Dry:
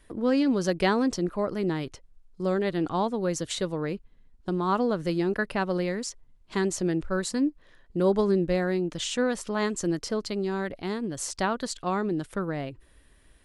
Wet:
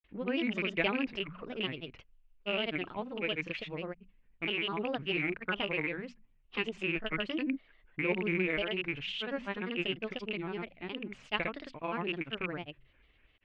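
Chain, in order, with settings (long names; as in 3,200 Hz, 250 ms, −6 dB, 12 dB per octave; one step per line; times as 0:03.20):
loose part that buzzes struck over −32 dBFS, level −24 dBFS
transistor ladder low-pass 2,800 Hz, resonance 70%
mains-hum notches 60/120/180/240 Hz
granular cloud, pitch spread up and down by 3 semitones
level +3.5 dB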